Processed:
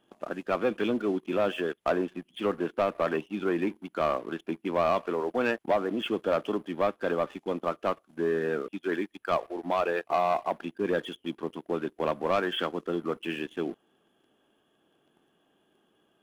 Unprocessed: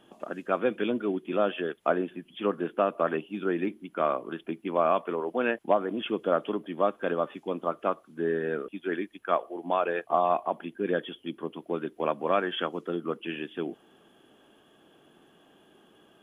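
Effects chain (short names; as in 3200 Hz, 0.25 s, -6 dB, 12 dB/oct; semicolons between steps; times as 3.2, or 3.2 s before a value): sample leveller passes 2; gain -6 dB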